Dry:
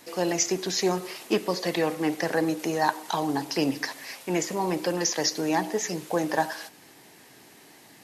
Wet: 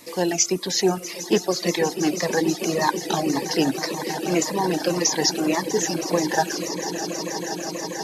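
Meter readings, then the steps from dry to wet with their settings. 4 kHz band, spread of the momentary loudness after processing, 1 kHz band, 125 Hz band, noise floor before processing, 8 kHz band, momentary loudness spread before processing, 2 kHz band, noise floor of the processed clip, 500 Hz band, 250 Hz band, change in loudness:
+6.0 dB, 7 LU, +3.0 dB, +5.0 dB, -53 dBFS, +6.5 dB, 6 LU, +3.0 dB, -35 dBFS, +4.5 dB, +4.5 dB, +4.0 dB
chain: echo with a slow build-up 161 ms, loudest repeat 8, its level -14 dB; reverb removal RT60 0.83 s; Shepard-style phaser falling 1.8 Hz; trim +5.5 dB

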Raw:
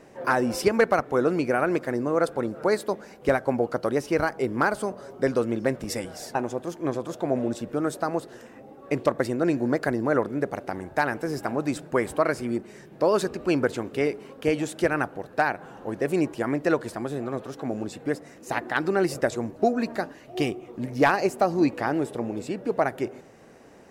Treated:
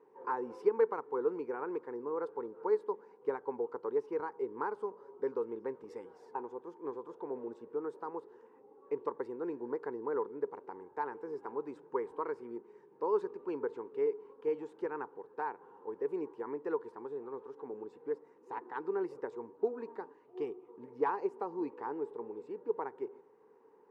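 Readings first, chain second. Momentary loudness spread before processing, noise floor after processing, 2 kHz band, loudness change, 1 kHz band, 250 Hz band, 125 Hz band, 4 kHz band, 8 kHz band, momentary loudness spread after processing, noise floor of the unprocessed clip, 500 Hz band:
9 LU, -62 dBFS, -21.0 dB, -12.0 dB, -11.5 dB, -17.0 dB, -27.5 dB, under -30 dB, under -35 dB, 11 LU, -49 dBFS, -9.5 dB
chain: two resonant band-passes 640 Hz, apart 1.1 oct; trim -4 dB

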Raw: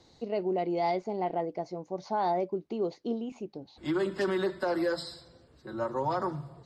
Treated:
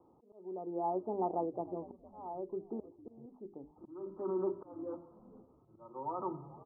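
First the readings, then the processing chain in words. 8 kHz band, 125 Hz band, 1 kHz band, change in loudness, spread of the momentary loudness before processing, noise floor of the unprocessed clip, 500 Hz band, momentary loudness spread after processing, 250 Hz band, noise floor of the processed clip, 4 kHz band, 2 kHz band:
no reading, -11.5 dB, -8.0 dB, -8.0 dB, 11 LU, -61 dBFS, -8.5 dB, 18 LU, -8.5 dB, -66 dBFS, under -40 dB, under -35 dB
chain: bass shelf 98 Hz -12 dB; hum notches 50/100/150/200/250/300/350/400/450 Hz; slow attack 785 ms; rippled Chebyshev low-pass 1.3 kHz, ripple 6 dB; frequency-shifting echo 457 ms, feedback 35%, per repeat -87 Hz, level -19 dB; trim +1 dB

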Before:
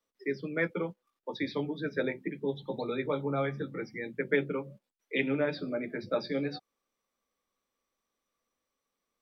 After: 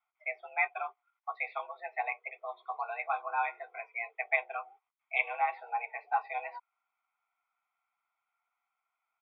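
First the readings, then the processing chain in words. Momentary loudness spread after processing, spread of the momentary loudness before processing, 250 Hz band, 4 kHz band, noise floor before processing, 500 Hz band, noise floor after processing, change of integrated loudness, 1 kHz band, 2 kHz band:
11 LU, 8 LU, under -40 dB, -12.5 dB, under -85 dBFS, -10.5 dB, under -85 dBFS, -1.5 dB, +10.0 dB, +2.5 dB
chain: mistuned SSB +220 Hz 380–2600 Hz; comb 0.9 ms, depth 90%

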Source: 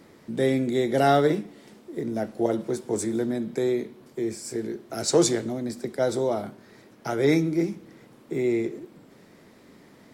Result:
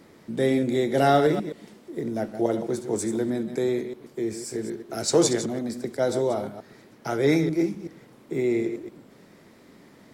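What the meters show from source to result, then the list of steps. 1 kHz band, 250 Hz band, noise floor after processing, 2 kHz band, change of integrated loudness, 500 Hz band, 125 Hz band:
+0.5 dB, +0.5 dB, -53 dBFS, +0.5 dB, +0.5 dB, +0.5 dB, 0.0 dB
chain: chunks repeated in reverse 127 ms, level -10 dB

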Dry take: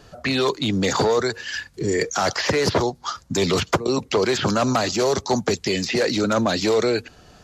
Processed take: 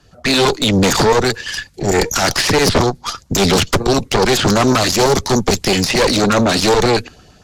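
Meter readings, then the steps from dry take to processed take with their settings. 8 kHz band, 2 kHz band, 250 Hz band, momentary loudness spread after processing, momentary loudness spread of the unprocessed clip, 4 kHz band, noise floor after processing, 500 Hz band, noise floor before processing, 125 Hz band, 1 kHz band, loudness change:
+10.0 dB, +7.5 dB, +7.0 dB, 6 LU, 6 LU, +9.0 dB, -48 dBFS, +5.5 dB, -51 dBFS, +8.5 dB, +7.5 dB, +7.5 dB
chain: LFO notch saw up 8.9 Hz 410–2000 Hz; Chebyshev shaper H 4 -8 dB, 5 -13 dB, 8 -20 dB, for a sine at -8.5 dBFS; three bands expanded up and down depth 40%; trim +3 dB

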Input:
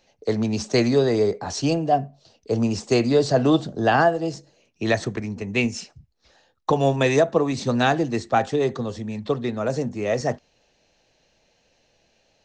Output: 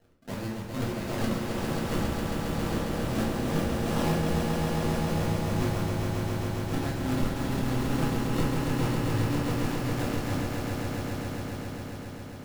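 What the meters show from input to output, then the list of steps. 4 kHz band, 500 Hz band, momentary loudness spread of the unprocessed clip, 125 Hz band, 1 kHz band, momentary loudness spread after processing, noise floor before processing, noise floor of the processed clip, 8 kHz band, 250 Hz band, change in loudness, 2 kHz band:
-6.0 dB, -11.0 dB, 11 LU, -0.5 dB, -9.0 dB, 7 LU, -66 dBFS, -39 dBFS, -4.0 dB, -4.5 dB, -7.5 dB, -8.0 dB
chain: cycle switcher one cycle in 2, inverted; tone controls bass +13 dB, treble +5 dB; reverse; compression 6:1, threshold -28 dBFS, peak gain reduction 19.5 dB; reverse; high-pass 91 Hz; chorus voices 2, 0.49 Hz, delay 28 ms, depth 4.1 ms; tremolo 2.5 Hz, depth 56%; decimation with a swept rate 37×, swing 100% 1.7 Hz; on a send: echo with a slow build-up 135 ms, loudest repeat 5, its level -5.5 dB; on the sum: simulated room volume 62 m³, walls mixed, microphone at 0.78 m

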